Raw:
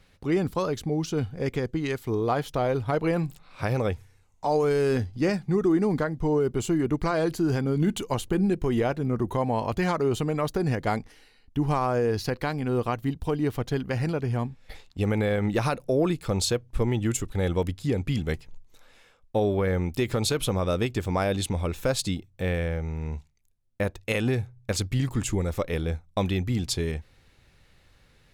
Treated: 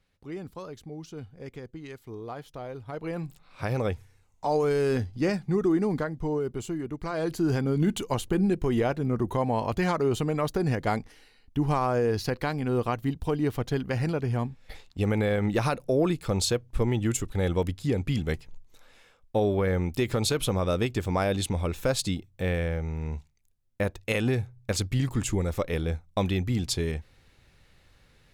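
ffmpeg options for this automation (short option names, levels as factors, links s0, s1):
-af "volume=2.51,afade=t=in:st=2.85:d=1:silence=0.266073,afade=t=out:st=5.68:d=1.3:silence=0.375837,afade=t=in:st=6.98:d=0.48:silence=0.334965"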